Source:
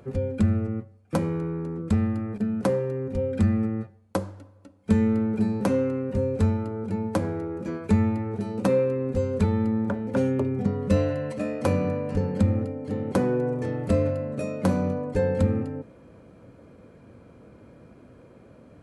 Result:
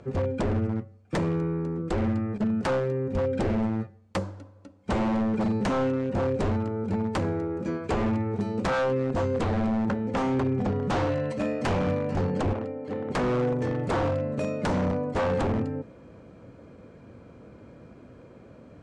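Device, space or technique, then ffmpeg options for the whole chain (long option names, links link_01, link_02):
synthesiser wavefolder: -filter_complex "[0:a]aeval=exprs='0.0841*(abs(mod(val(0)/0.0841+3,4)-2)-1)':channel_layout=same,lowpass=frequency=8000:width=0.5412,lowpass=frequency=8000:width=1.3066,asettb=1/sr,asplit=3[link_01][link_02][link_03];[link_01]atrim=end=12.534[link_04];[link_02]atrim=start=12.53:end=13.1,asetpts=PTS-STARTPTS,afade=type=in:duration=0.004:curve=qsin,afade=type=out:start_time=0.566:duration=0.004:curve=qsin,bass=frequency=250:gain=-11,treble=frequency=4000:gain=-8[link_05];[link_03]atrim=start=13.096[link_06];[link_04][link_05]acrossfade=duration=0.004:curve1=hsin:curve2=qsin[link_07];[link_07][link_06]acrossfade=duration=0.004:curve1=qsin:curve2=hsin,volume=1.5dB"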